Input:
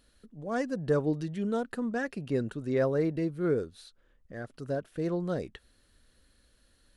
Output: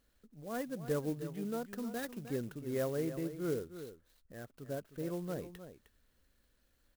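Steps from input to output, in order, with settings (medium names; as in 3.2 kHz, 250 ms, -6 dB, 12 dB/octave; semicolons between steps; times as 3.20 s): 1.78–2.31 s: careless resampling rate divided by 8×, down none, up hold; delay 309 ms -11.5 dB; sampling jitter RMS 0.046 ms; trim -8 dB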